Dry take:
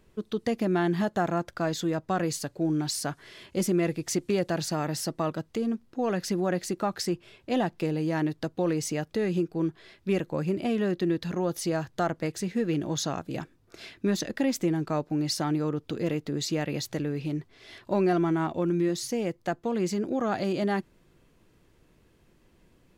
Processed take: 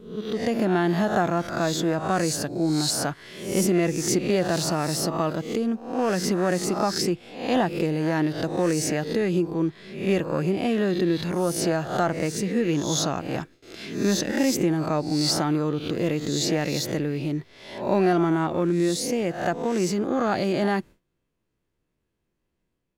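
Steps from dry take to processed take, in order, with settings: spectral swells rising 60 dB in 0.58 s; gate with hold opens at -47 dBFS; AGC gain up to 3 dB

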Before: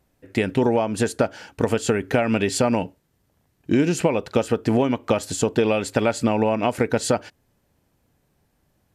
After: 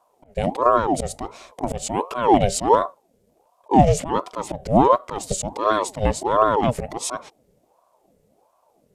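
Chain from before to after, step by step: ten-band EQ 125 Hz +9 dB, 250 Hz +10 dB, 1000 Hz -10 dB, 8000 Hz +5 dB; auto swell 0.109 s; ring modulator with a swept carrier 580 Hz, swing 50%, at 1.4 Hz

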